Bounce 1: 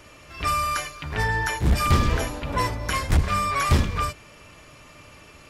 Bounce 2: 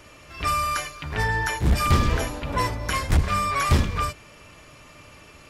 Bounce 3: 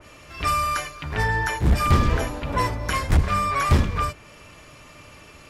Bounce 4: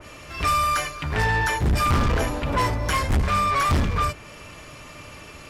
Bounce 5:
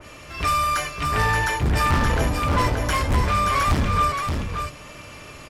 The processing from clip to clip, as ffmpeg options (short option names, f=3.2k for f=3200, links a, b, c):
-af anull
-af "adynamicequalizer=threshold=0.01:dfrequency=2400:dqfactor=0.7:tfrequency=2400:tqfactor=0.7:attack=5:release=100:ratio=0.375:range=2.5:mode=cutabove:tftype=highshelf,volume=1.5dB"
-af "asoftclip=type=tanh:threshold=-21dB,volume=4.5dB"
-af "aecho=1:1:576:0.562"